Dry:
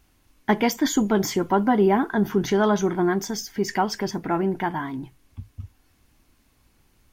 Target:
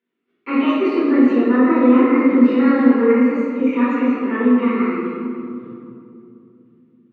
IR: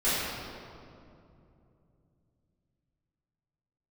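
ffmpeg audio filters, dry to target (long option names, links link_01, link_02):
-filter_complex "[0:a]asplit=2[link_01][link_02];[link_02]acompressor=mode=upward:threshold=-24dB:ratio=2.5,volume=3dB[link_03];[link_01][link_03]amix=inputs=2:normalize=0,asetrate=57191,aresample=44100,atempo=0.771105,agate=range=-30dB:threshold=-32dB:ratio=16:detection=peak,highpass=frequency=220:width=0.5412,highpass=frequency=220:width=1.3066,equalizer=frequency=230:width_type=q:width=4:gain=9,equalizer=frequency=570:width_type=q:width=4:gain=-7,equalizer=frequency=860:width_type=q:width=4:gain=-9,lowpass=frequency=2900:width=0.5412,lowpass=frequency=2900:width=1.3066[link_04];[1:a]atrim=start_sample=2205[link_05];[link_04][link_05]afir=irnorm=-1:irlink=0,volume=-16.5dB"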